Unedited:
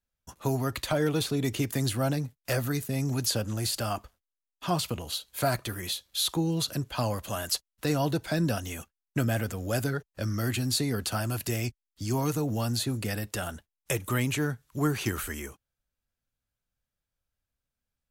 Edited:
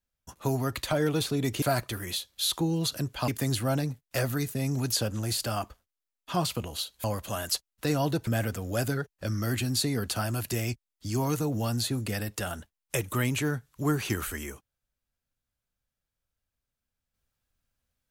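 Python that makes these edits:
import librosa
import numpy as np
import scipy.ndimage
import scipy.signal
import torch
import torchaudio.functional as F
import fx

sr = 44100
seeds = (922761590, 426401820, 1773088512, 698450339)

y = fx.edit(x, sr, fx.move(start_s=5.38, length_s=1.66, to_s=1.62),
    fx.cut(start_s=8.27, length_s=0.96), tone=tone)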